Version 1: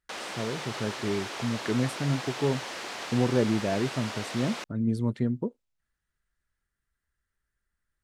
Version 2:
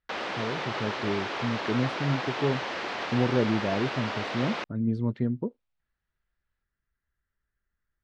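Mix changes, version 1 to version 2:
background +6.5 dB; master: add distance through air 210 m

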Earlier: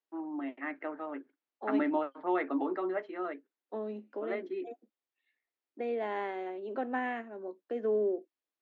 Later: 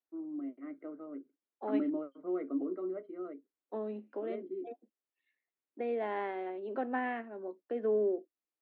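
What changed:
first voice: add boxcar filter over 51 samples; second voice: add distance through air 170 m

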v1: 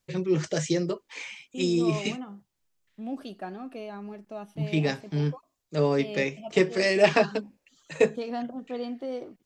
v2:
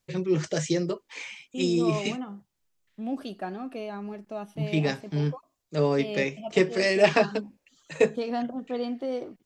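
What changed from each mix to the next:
second voice +3.0 dB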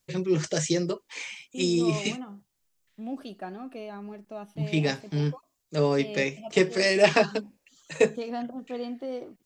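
first voice: add treble shelf 4.8 kHz +7 dB; second voice -3.5 dB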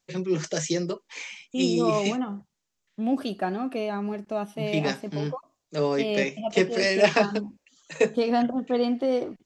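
first voice: add elliptic band-pass 170–7000 Hz; second voice +10.0 dB

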